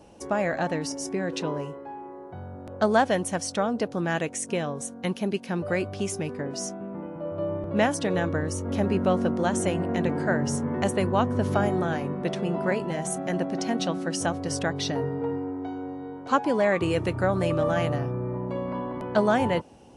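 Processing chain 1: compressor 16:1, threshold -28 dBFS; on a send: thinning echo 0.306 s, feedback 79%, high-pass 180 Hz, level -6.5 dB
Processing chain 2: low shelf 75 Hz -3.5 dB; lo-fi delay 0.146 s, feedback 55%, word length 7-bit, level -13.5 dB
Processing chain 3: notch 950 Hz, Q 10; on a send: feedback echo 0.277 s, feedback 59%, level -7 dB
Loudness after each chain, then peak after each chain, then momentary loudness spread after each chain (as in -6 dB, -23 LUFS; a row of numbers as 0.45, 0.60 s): -32.0, -27.0, -26.0 LUFS; -17.5, -8.5, -8.5 dBFS; 3, 10, 9 LU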